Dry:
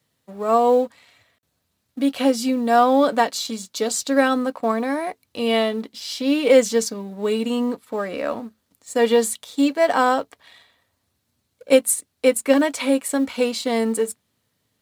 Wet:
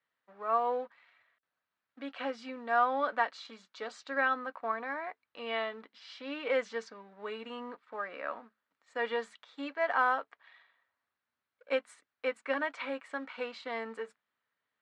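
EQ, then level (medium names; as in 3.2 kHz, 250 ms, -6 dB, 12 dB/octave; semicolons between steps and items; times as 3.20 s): band-pass filter 1.5 kHz, Q 1.6; distance through air 120 m; -4.0 dB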